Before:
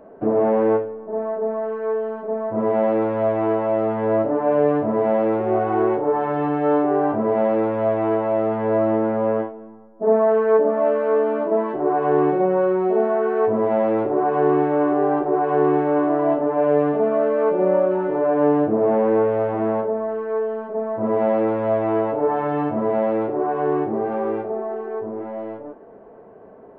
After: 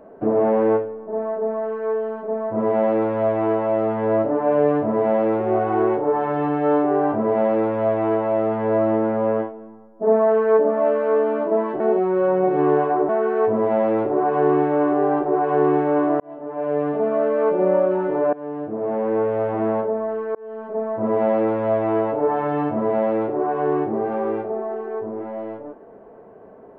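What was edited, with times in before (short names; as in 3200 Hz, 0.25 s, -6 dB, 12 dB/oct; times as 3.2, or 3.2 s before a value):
11.8–13.09 reverse
16.2–17.57 fade in equal-power
18.33–19.58 fade in, from -19.5 dB
20.35–20.73 fade in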